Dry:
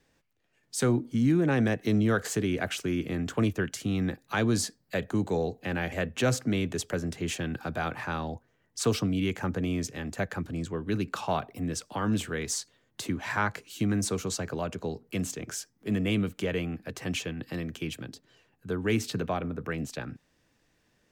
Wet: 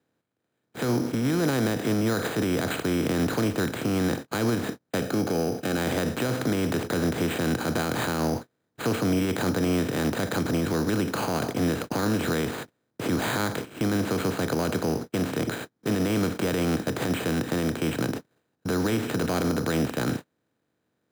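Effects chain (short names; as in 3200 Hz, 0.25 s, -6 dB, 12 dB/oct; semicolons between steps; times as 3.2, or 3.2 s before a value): per-bin compression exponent 0.4; HPF 59 Hz 24 dB/oct; gate -29 dBFS, range -39 dB; limiter -16.5 dBFS, peak gain reduction 8.5 dB; 5–5.78 notch comb 980 Hz; careless resampling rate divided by 8×, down filtered, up hold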